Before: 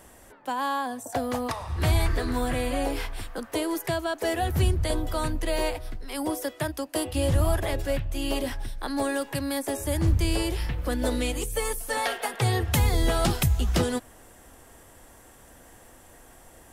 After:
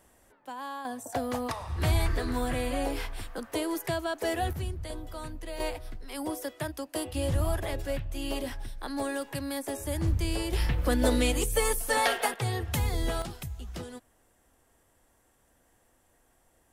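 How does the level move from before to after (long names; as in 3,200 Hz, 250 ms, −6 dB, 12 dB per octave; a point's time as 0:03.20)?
−10.5 dB
from 0:00.85 −3 dB
from 0:04.53 −11.5 dB
from 0:05.60 −5 dB
from 0:10.53 +2 dB
from 0:12.34 −6.5 dB
from 0:13.22 −15.5 dB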